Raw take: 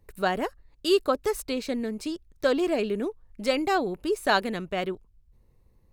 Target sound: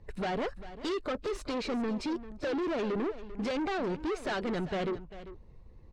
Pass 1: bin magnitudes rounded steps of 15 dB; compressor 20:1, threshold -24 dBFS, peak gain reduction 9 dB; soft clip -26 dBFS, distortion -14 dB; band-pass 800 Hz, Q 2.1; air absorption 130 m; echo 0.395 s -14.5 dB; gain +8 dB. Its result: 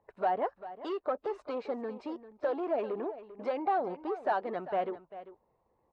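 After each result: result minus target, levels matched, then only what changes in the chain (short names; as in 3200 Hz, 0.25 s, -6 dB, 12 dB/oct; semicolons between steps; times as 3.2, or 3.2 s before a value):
1000 Hz band +6.0 dB; soft clip: distortion -8 dB
remove: band-pass 800 Hz, Q 2.1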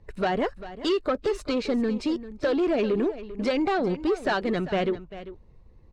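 soft clip: distortion -8 dB
change: soft clip -37.5 dBFS, distortion -5 dB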